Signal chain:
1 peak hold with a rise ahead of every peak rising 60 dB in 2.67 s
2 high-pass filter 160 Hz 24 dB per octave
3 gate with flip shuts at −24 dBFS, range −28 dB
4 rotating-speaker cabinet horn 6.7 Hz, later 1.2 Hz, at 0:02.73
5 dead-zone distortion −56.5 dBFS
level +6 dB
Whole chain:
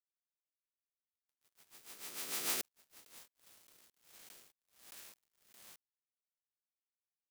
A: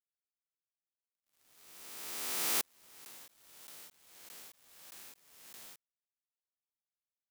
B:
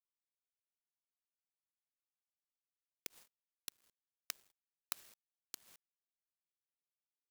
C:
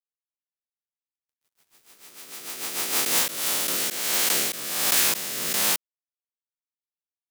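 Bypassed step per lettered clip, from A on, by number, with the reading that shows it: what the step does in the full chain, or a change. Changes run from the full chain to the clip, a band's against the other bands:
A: 4, change in integrated loudness +3.5 LU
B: 1, 250 Hz band −4.5 dB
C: 3, change in momentary loudness spread −12 LU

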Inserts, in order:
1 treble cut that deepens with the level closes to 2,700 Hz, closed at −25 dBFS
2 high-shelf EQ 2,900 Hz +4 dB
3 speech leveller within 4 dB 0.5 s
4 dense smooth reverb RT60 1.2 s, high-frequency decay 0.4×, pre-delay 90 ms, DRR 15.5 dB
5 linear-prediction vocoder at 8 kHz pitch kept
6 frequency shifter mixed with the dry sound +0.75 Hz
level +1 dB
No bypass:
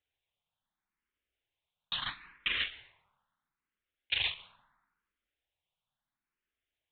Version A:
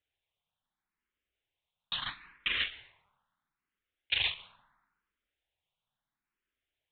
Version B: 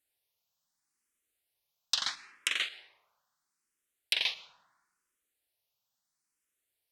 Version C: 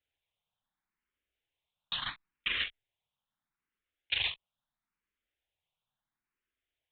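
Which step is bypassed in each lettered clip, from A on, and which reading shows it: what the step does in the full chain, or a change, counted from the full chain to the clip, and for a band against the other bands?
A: 3, change in momentary loudness spread +1 LU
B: 5, 4 kHz band +2.0 dB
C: 4, change in momentary loudness spread −3 LU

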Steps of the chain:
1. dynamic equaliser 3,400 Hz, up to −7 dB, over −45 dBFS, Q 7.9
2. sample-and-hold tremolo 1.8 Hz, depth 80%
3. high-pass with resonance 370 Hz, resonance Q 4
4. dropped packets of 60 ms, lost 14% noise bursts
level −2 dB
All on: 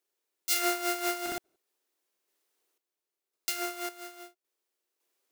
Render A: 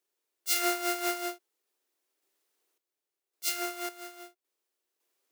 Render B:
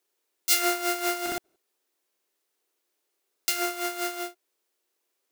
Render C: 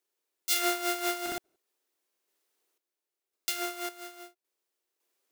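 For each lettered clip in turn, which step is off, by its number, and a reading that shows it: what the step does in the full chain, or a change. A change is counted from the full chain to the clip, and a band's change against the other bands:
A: 4, change in momentary loudness spread +2 LU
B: 2, change in momentary loudness spread −4 LU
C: 1, 4 kHz band +1.5 dB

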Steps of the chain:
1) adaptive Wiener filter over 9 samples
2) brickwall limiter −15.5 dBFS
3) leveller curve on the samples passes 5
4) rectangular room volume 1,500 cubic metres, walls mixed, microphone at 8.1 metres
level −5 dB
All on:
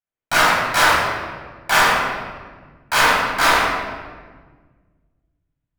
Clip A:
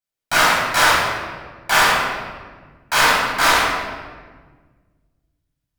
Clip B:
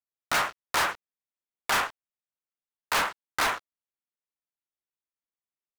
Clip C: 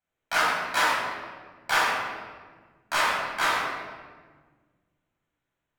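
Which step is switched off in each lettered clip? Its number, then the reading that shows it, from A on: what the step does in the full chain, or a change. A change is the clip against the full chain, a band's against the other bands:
1, 8 kHz band +2.5 dB
4, echo-to-direct ratio 9.5 dB to none audible
3, 125 Hz band −6.0 dB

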